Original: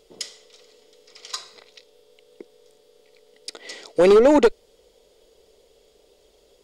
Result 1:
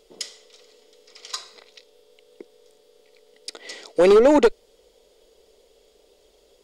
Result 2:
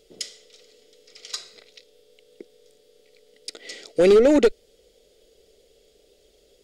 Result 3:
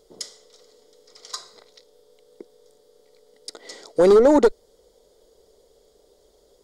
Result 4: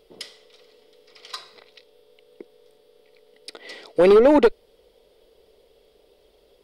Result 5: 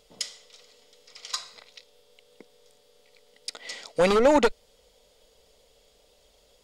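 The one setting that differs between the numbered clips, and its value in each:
parametric band, centre frequency: 110, 980, 2,600, 6,900, 370 Hertz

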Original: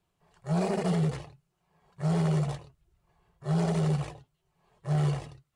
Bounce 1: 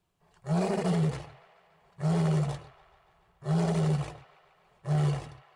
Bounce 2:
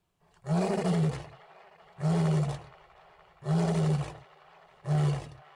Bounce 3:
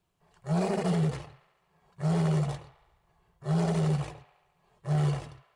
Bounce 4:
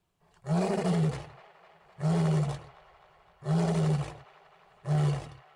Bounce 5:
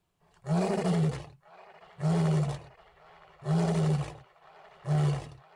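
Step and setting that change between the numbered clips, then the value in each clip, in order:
delay with a band-pass on its return, delay time: 143, 469, 70, 257, 965 milliseconds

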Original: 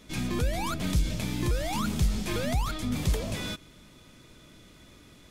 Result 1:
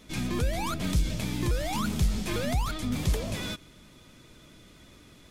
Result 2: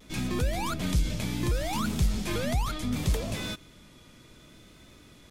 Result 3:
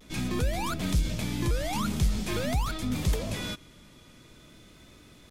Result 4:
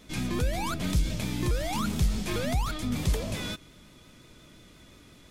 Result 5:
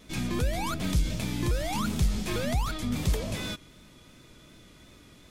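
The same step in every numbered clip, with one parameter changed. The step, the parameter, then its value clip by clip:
pitch vibrato, speed: 12, 0.68, 0.46, 5.7, 2.7 Hertz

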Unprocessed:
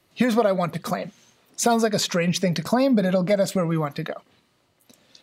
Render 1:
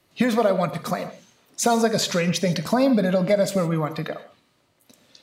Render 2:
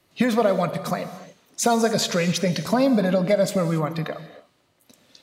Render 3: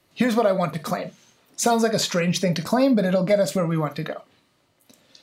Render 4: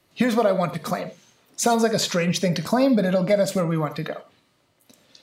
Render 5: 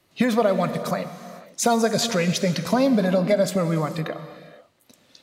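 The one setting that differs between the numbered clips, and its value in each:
reverb whose tail is shaped and stops, gate: 180, 310, 80, 120, 520 milliseconds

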